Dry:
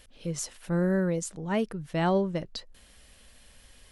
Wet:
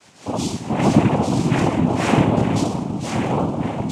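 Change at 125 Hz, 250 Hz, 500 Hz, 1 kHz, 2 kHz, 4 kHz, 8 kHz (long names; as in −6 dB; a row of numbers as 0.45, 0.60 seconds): +13.0, +12.5, +7.5, +13.0, +10.0, +11.0, +5.5 decibels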